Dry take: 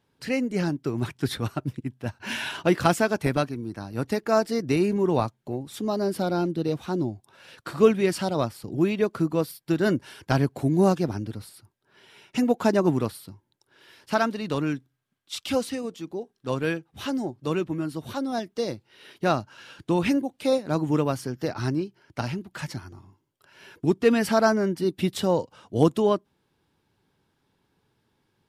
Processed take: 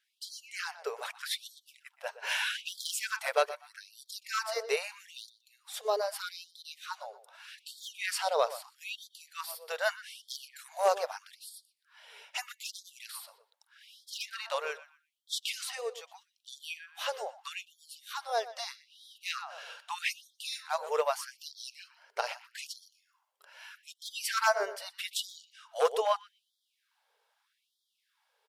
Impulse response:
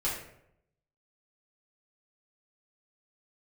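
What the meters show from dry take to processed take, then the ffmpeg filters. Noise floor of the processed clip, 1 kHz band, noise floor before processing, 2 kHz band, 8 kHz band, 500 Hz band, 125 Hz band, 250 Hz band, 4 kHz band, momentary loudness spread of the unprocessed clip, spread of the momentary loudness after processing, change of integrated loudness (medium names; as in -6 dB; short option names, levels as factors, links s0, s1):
-81 dBFS, -5.0 dB, -73 dBFS, -3.0 dB, 0.0 dB, -10.0 dB, under -40 dB, under -40 dB, 0.0 dB, 13 LU, 19 LU, -9.0 dB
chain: -filter_complex "[0:a]asplit=2[s0][s1];[s1]adelay=122,lowpass=f=3700:p=1,volume=0.178,asplit=2[s2][s3];[s3]adelay=122,lowpass=f=3700:p=1,volume=0.3,asplit=2[s4][s5];[s5]adelay=122,lowpass=f=3700:p=1,volume=0.3[s6];[s0][s2][s4][s6]amix=inputs=4:normalize=0,volume=4.22,asoftclip=hard,volume=0.237,afftfilt=real='re*gte(b*sr/1024,400*pow(3200/400,0.5+0.5*sin(2*PI*0.8*pts/sr)))':imag='im*gte(b*sr/1024,400*pow(3200/400,0.5+0.5*sin(2*PI*0.8*pts/sr)))':win_size=1024:overlap=0.75"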